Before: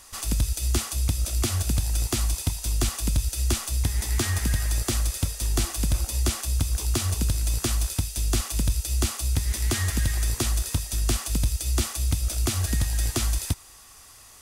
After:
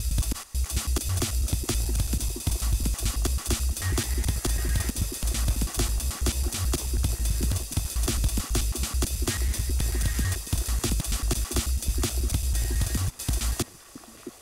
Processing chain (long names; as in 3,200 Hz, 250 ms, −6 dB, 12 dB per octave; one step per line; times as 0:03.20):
slices reordered back to front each 109 ms, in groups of 5
on a send: echo through a band-pass that steps 667 ms, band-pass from 310 Hz, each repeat 0.7 octaves, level −6 dB
on the sum: level −1.5 dB